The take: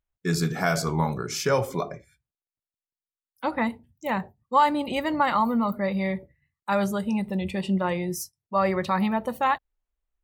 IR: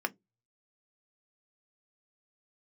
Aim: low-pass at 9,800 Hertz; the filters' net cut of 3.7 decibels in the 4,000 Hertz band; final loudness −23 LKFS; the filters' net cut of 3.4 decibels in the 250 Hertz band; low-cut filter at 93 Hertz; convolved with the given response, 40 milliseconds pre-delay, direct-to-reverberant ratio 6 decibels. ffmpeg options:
-filter_complex "[0:a]highpass=93,lowpass=9800,equalizer=frequency=250:width_type=o:gain=-4.5,equalizer=frequency=4000:width_type=o:gain=-5,asplit=2[link_01][link_02];[1:a]atrim=start_sample=2205,adelay=40[link_03];[link_02][link_03]afir=irnorm=-1:irlink=0,volume=-12dB[link_04];[link_01][link_04]amix=inputs=2:normalize=0,volume=4dB"

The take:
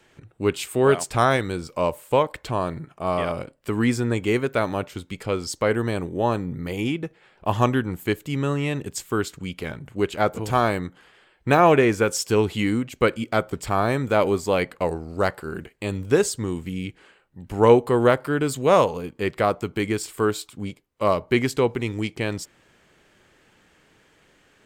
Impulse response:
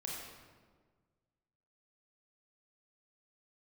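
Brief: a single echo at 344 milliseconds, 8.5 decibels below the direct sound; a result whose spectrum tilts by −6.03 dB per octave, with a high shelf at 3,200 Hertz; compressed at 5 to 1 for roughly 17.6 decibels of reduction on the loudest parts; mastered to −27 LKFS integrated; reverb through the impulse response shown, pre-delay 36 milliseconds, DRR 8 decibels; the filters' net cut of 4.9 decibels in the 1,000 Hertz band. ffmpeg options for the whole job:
-filter_complex "[0:a]equalizer=frequency=1000:width_type=o:gain=-6,highshelf=frequency=3200:gain=-5,acompressor=threshold=-31dB:ratio=5,aecho=1:1:344:0.376,asplit=2[link_01][link_02];[1:a]atrim=start_sample=2205,adelay=36[link_03];[link_02][link_03]afir=irnorm=-1:irlink=0,volume=-8dB[link_04];[link_01][link_04]amix=inputs=2:normalize=0,volume=7.5dB"

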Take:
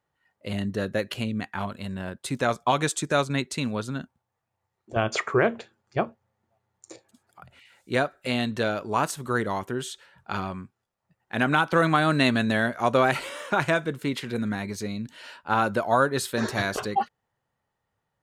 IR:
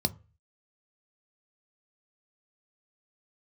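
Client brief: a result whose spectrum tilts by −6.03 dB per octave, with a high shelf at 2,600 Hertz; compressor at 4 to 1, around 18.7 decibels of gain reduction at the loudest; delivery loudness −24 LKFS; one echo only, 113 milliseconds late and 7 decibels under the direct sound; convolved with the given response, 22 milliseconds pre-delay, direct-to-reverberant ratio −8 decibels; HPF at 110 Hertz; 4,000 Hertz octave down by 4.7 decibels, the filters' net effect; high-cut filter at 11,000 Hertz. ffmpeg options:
-filter_complex "[0:a]highpass=110,lowpass=11000,highshelf=frequency=2600:gain=4,equalizer=frequency=4000:width_type=o:gain=-9,acompressor=threshold=-40dB:ratio=4,aecho=1:1:113:0.447,asplit=2[link_01][link_02];[1:a]atrim=start_sample=2205,adelay=22[link_03];[link_02][link_03]afir=irnorm=-1:irlink=0,volume=2dB[link_04];[link_01][link_04]amix=inputs=2:normalize=0,volume=3.5dB"

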